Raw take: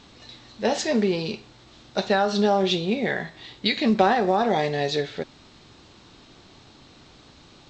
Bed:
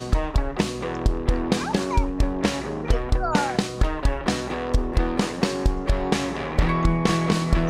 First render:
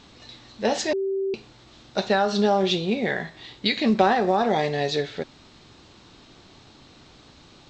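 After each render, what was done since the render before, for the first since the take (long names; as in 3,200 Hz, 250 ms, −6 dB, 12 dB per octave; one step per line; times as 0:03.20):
0:00.93–0:01.34: beep over 388 Hz −22.5 dBFS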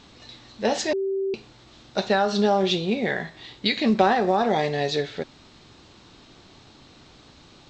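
no processing that can be heard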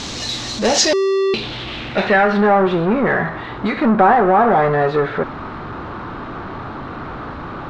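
power curve on the samples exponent 0.5
low-pass filter sweep 6,500 Hz → 1,300 Hz, 0:00.70–0:02.66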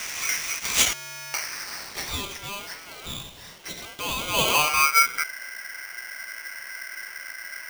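band-pass filter sweep 4,100 Hz → 210 Hz, 0:03.98–0:05.33
ring modulator with a square carrier 1,800 Hz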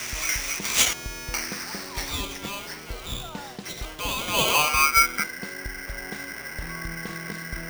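mix in bed −16 dB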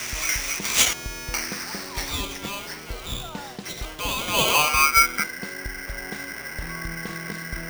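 level +1.5 dB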